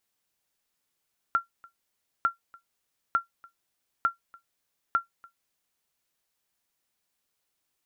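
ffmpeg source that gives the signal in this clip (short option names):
-f lavfi -i "aevalsrc='0.188*(sin(2*PI*1370*mod(t,0.9))*exp(-6.91*mod(t,0.9)/0.13)+0.0501*sin(2*PI*1370*max(mod(t,0.9)-0.29,0))*exp(-6.91*max(mod(t,0.9)-0.29,0)/0.13))':d=4.5:s=44100"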